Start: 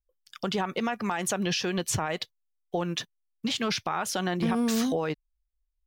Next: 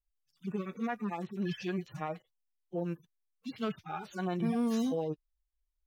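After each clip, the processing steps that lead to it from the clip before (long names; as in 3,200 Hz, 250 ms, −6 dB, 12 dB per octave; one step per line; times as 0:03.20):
harmonic-percussive split with one part muted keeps harmonic
level −4 dB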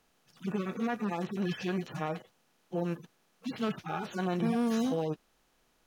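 compressor on every frequency bin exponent 0.6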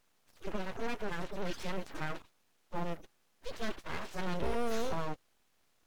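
full-wave rectification
level −1 dB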